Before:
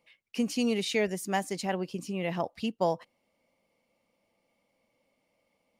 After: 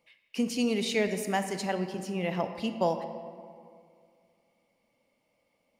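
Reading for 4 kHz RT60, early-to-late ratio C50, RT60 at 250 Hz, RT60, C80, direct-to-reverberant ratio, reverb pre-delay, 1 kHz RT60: 1.3 s, 8.5 dB, 2.2 s, 2.2 s, 9.5 dB, 7.5 dB, 23 ms, 2.2 s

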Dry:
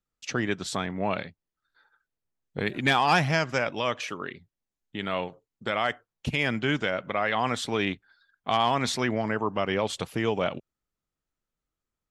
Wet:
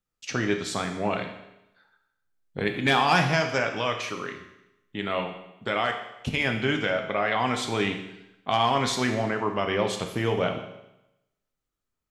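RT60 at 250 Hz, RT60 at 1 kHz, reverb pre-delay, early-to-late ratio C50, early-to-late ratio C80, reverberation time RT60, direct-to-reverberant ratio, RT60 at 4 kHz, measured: 0.90 s, 0.90 s, 8 ms, 8.0 dB, 10.0 dB, 0.90 s, 4.0 dB, 0.90 s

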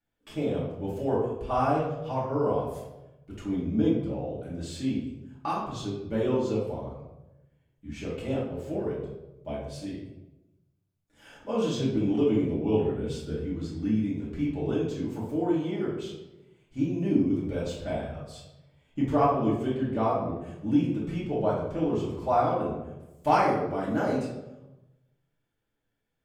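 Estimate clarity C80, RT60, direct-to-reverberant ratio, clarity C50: 6.5 dB, 1.0 s, -8.5 dB, 2.0 dB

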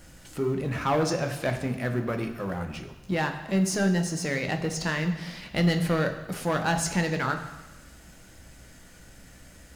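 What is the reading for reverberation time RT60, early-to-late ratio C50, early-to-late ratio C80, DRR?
1.1 s, 9.0 dB, 11.0 dB, 5.0 dB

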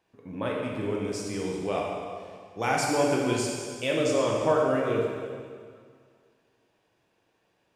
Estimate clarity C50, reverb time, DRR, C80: 0.0 dB, 2.0 s, -2.5 dB, 2.0 dB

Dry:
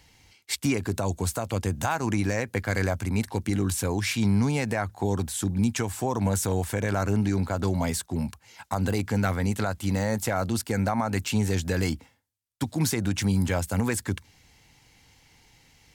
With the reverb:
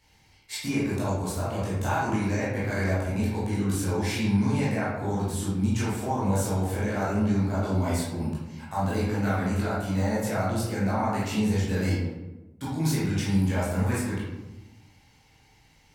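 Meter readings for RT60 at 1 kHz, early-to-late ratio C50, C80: 1.0 s, -0.5 dB, 3.5 dB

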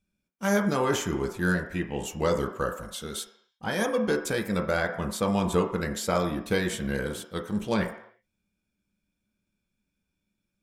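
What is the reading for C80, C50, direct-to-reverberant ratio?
11.0 dB, 9.0 dB, 2.5 dB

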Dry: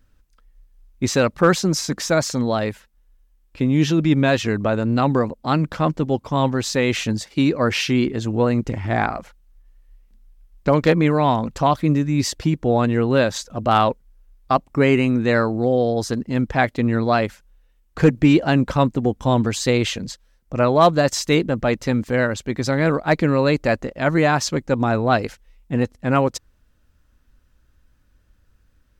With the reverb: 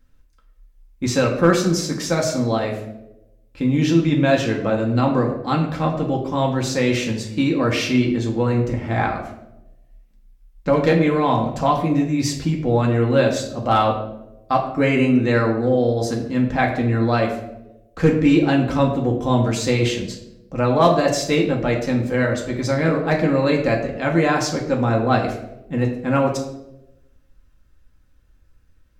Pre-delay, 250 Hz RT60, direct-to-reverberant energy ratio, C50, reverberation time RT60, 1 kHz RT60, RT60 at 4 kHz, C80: 4 ms, 1.1 s, -1.0 dB, 7.0 dB, 0.95 s, 0.75 s, 0.60 s, 9.5 dB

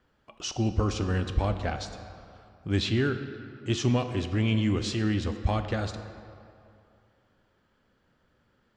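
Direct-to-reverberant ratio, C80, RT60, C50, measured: 8.0 dB, 10.0 dB, 2.6 s, 9.0 dB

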